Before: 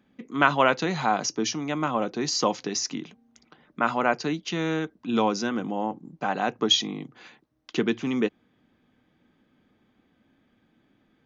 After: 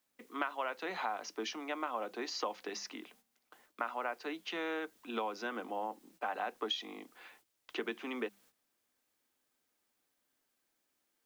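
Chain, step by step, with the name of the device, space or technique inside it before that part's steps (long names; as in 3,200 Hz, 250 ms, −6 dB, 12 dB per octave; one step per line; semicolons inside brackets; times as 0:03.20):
Butterworth high-pass 180 Hz 72 dB per octave
baby monitor (band-pass filter 480–3,100 Hz; downward compressor 10 to 1, threshold −28 dBFS, peak gain reduction 14.5 dB; white noise bed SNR 28 dB; noise gate −59 dBFS, range −12 dB)
mains-hum notches 50/100/150/200 Hz
level −4.5 dB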